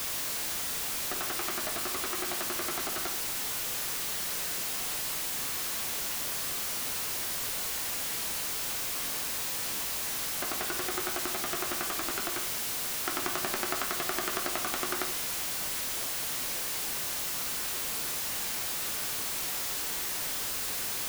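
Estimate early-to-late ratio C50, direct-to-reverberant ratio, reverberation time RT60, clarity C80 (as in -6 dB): 10.0 dB, 5.5 dB, 0.50 s, 14.5 dB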